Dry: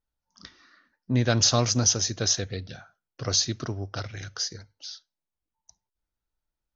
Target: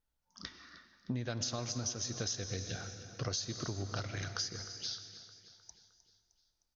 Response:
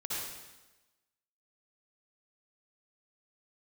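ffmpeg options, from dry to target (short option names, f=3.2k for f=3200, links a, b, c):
-filter_complex "[0:a]asplit=2[a][b];[1:a]atrim=start_sample=2205,asetrate=26460,aresample=44100[c];[b][c]afir=irnorm=-1:irlink=0,volume=-19.5dB[d];[a][d]amix=inputs=2:normalize=0,acompressor=threshold=-34dB:ratio=12,aecho=1:1:308|616|924|1232|1540:0.168|0.0923|0.0508|0.0279|0.0154"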